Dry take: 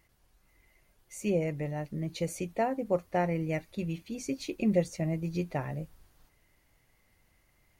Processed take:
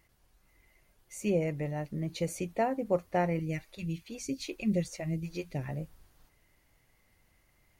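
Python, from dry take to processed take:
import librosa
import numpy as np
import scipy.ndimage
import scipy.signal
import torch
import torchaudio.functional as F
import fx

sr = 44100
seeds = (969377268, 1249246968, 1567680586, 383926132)

y = fx.phaser_stages(x, sr, stages=2, low_hz=110.0, high_hz=1200.0, hz=2.4, feedback_pct=25, at=(3.39, 5.69))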